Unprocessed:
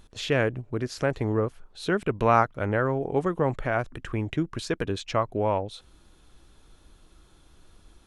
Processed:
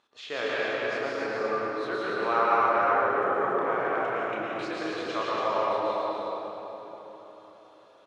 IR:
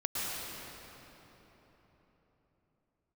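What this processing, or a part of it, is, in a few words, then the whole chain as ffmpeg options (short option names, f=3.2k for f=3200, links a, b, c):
station announcement: -filter_complex "[0:a]highpass=490,lowpass=4.5k,equalizer=f=1.2k:t=o:w=0.24:g=5,aecho=1:1:32.07|282.8:0.501|0.631[a];[1:a]atrim=start_sample=2205[b];[a][b]afir=irnorm=-1:irlink=0,volume=-7dB"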